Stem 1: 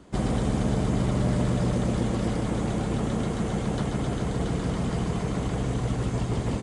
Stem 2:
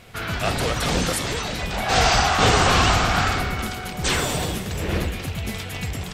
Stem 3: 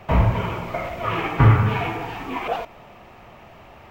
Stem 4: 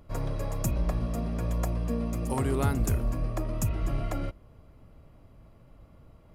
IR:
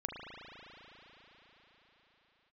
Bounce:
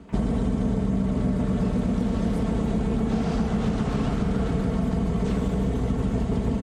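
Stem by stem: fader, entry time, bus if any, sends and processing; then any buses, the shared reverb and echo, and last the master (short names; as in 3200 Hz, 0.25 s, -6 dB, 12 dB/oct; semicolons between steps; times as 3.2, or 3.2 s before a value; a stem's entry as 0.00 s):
-2.5 dB, 0.00 s, send -7 dB, HPF 45 Hz; comb 4.5 ms, depth 55%
-17.0 dB, 1.20 s, no send, dry
-14.0 dB, 0.00 s, no send, HPF 1500 Hz; compressor, threshold -35 dBFS, peak gain reduction 10.5 dB
-18.5 dB, 2.00 s, no send, dry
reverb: on, RT60 5.0 s, pre-delay 36 ms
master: tilt -2 dB/oct; compressor, threshold -20 dBFS, peak gain reduction 7.5 dB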